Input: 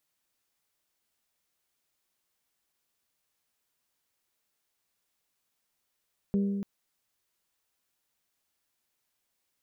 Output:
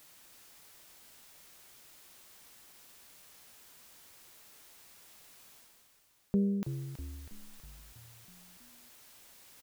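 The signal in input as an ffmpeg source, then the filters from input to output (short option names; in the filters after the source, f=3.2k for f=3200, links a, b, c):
-f lavfi -i "aevalsrc='0.075*pow(10,-3*t/1.99)*sin(2*PI*199*t)+0.0251*pow(10,-3*t/1.225)*sin(2*PI*398*t)+0.00841*pow(10,-3*t/1.078)*sin(2*PI*477.6*t)+0.00282*pow(10,-3*t/0.922)*sin(2*PI*597*t)':d=0.29:s=44100"
-filter_complex "[0:a]areverse,acompressor=mode=upward:threshold=-39dB:ratio=2.5,areverse,asplit=8[a][b][c][d][e][f][g][h];[b]adelay=323,afreqshift=-63,volume=-9.5dB[i];[c]adelay=646,afreqshift=-126,volume=-14.2dB[j];[d]adelay=969,afreqshift=-189,volume=-19dB[k];[e]adelay=1292,afreqshift=-252,volume=-23.7dB[l];[f]adelay=1615,afreqshift=-315,volume=-28.4dB[m];[g]adelay=1938,afreqshift=-378,volume=-33.2dB[n];[h]adelay=2261,afreqshift=-441,volume=-37.9dB[o];[a][i][j][k][l][m][n][o]amix=inputs=8:normalize=0"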